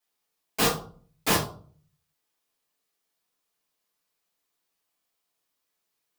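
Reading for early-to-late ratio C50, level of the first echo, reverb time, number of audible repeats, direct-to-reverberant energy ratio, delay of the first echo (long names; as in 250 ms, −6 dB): 7.0 dB, no echo audible, 0.50 s, no echo audible, −9.5 dB, no echo audible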